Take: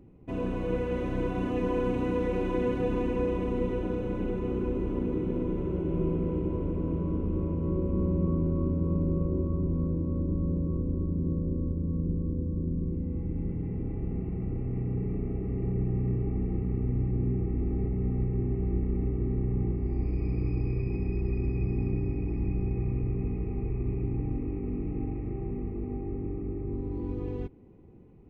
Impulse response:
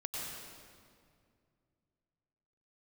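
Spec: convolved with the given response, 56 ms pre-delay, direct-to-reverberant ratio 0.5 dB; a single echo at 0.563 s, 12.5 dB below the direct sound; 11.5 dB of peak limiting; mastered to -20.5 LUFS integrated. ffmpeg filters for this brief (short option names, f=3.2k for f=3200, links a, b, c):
-filter_complex "[0:a]alimiter=level_in=3.5dB:limit=-24dB:level=0:latency=1,volume=-3.5dB,aecho=1:1:563:0.237,asplit=2[a][b];[1:a]atrim=start_sample=2205,adelay=56[c];[b][c]afir=irnorm=-1:irlink=0,volume=-2dB[d];[a][d]amix=inputs=2:normalize=0,volume=11dB"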